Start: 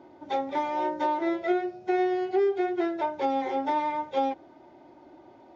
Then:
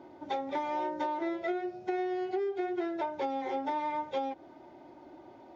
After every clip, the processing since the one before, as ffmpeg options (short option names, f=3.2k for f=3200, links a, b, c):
-af "acompressor=threshold=-30dB:ratio=6"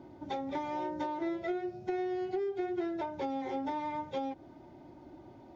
-af "bass=f=250:g=14,treble=f=4k:g=4,volume=-4dB"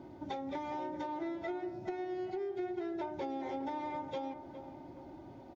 -filter_complex "[0:a]acompressor=threshold=-39dB:ratio=2.5,asplit=2[a][b];[b]adelay=413,lowpass=f=1.4k:p=1,volume=-10dB,asplit=2[c][d];[d]adelay=413,lowpass=f=1.4k:p=1,volume=0.54,asplit=2[e][f];[f]adelay=413,lowpass=f=1.4k:p=1,volume=0.54,asplit=2[g][h];[h]adelay=413,lowpass=f=1.4k:p=1,volume=0.54,asplit=2[i][j];[j]adelay=413,lowpass=f=1.4k:p=1,volume=0.54,asplit=2[k][l];[l]adelay=413,lowpass=f=1.4k:p=1,volume=0.54[m];[a][c][e][g][i][k][m]amix=inputs=7:normalize=0,volume=1dB"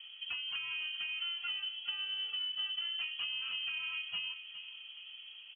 -af "lowpass=f=2.9k:t=q:w=0.5098,lowpass=f=2.9k:t=q:w=0.6013,lowpass=f=2.9k:t=q:w=0.9,lowpass=f=2.9k:t=q:w=2.563,afreqshift=-3400"